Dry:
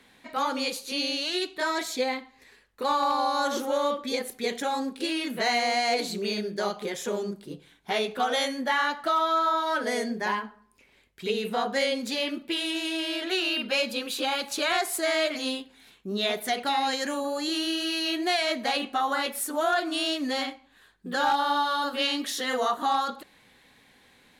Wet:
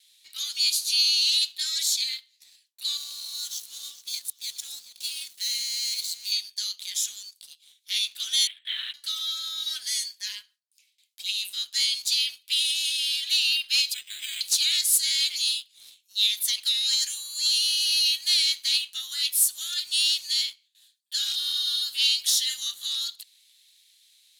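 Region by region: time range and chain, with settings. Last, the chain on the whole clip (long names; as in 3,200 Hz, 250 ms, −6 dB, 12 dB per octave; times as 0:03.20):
0:02.97–0:06.32: slack as between gear wheels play −34.5 dBFS + parametric band 2,400 Hz −8 dB 2.7 octaves + delay that swaps between a low-pass and a high-pass 211 ms, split 1,100 Hz, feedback 61%, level −9.5 dB
0:08.47–0:08.94: linear-prediction vocoder at 8 kHz whisper + multiband upward and downward compressor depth 40%
0:13.94–0:14.41: EQ curve with evenly spaced ripples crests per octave 1.1, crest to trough 8 dB + linearly interpolated sample-rate reduction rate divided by 8×
whole clip: inverse Chebyshev high-pass filter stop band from 620 Hz, stop band 80 dB; noise gate with hold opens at −59 dBFS; leveller curve on the samples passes 1; level +8.5 dB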